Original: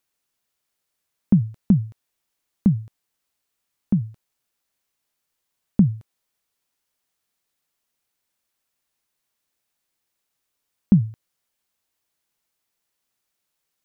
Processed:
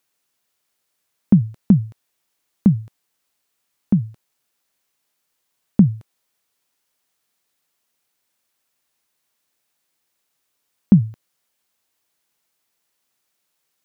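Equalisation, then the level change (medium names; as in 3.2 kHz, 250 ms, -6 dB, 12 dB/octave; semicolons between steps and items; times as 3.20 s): bass shelf 75 Hz -10.5 dB; +5.0 dB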